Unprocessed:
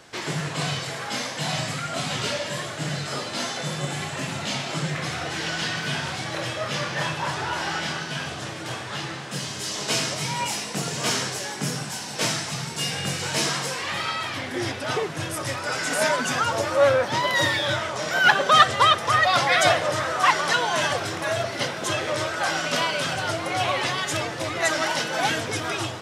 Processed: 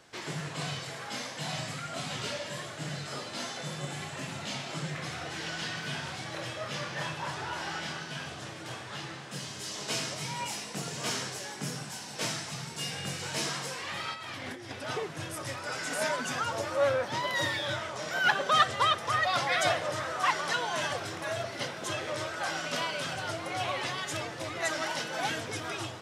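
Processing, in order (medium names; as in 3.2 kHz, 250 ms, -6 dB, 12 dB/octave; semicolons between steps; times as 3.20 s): 14.14–14.71 s: compressor with a negative ratio -33 dBFS, ratio -1; trim -8.5 dB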